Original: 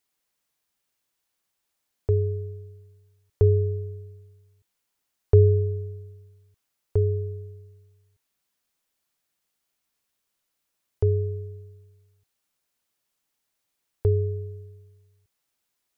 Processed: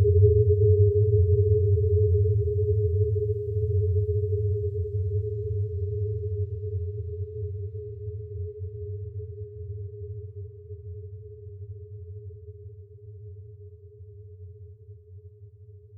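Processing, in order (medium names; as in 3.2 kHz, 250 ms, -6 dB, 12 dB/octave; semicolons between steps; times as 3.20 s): level-controlled noise filter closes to 460 Hz, open at -21 dBFS; Paulstretch 22×, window 0.10 s, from 7.00 s; trim +1.5 dB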